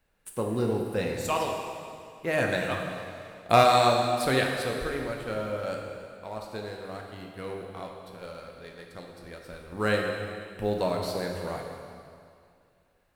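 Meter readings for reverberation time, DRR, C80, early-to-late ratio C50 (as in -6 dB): 2.3 s, 0.5 dB, 4.0 dB, 2.5 dB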